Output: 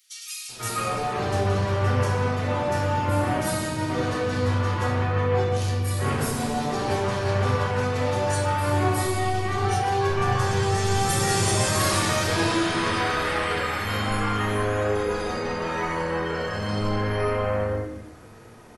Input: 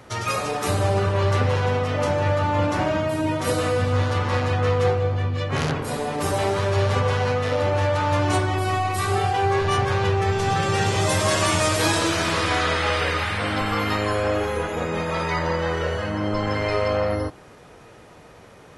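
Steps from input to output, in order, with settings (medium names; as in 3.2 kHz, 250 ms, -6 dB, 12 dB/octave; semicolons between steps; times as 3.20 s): treble shelf 7.8 kHz +9 dB; bands offset in time highs, lows 490 ms, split 3 kHz; reverberation RT60 0.85 s, pre-delay 3 ms, DRR -4.5 dB; trim -7.5 dB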